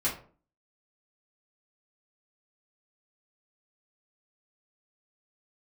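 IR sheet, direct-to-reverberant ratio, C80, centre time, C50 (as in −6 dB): −8.5 dB, 14.0 dB, 24 ms, 8.5 dB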